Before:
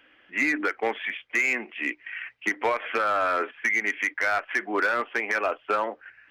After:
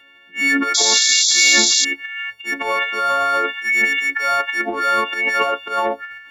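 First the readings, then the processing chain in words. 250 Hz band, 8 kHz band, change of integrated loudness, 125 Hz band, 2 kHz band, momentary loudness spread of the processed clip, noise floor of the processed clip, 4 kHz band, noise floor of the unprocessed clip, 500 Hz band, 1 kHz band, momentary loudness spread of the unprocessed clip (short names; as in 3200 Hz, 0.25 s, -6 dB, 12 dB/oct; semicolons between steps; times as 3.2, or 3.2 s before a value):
+6.5 dB, +28.0 dB, +10.5 dB, n/a, +7.5 dB, 13 LU, -49 dBFS, +24.0 dB, -60 dBFS, +4.0 dB, +7.5 dB, 7 LU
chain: frequency quantiser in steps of 4 st; transient shaper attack -10 dB, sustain +11 dB; painted sound noise, 0.74–1.85, 3300–7500 Hz -18 dBFS; gain +2.5 dB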